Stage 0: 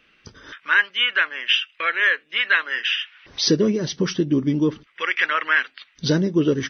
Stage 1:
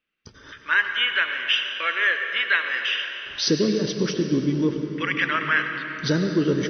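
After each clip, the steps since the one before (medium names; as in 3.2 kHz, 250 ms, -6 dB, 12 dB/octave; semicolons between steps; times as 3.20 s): gate with hold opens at -46 dBFS; on a send at -5 dB: reverberation RT60 3.7 s, pre-delay 78 ms; on the sum: trim -3 dB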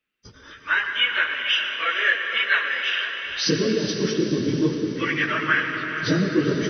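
phase randomisation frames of 50 ms; echo that smears into a reverb 462 ms, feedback 49%, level -9 dB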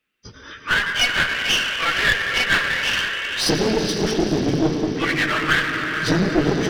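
one-sided clip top -29.5 dBFS; trim +5.5 dB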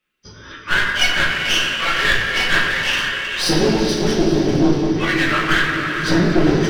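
simulated room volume 110 m³, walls mixed, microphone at 0.99 m; trim -1.5 dB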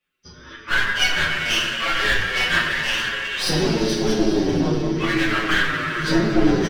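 endless flanger 7.6 ms -0.89 Hz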